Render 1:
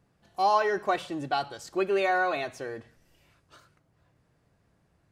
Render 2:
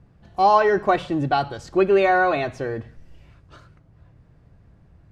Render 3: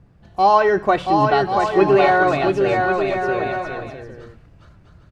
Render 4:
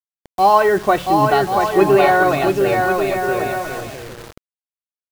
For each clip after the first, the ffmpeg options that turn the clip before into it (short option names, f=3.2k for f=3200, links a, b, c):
-af "aemphasis=mode=reproduction:type=bsi,volume=7dB"
-af "aecho=1:1:680|1088|1333|1480|1568:0.631|0.398|0.251|0.158|0.1,volume=2dB"
-af "acrusher=bits=5:mix=0:aa=0.000001,volume=1.5dB"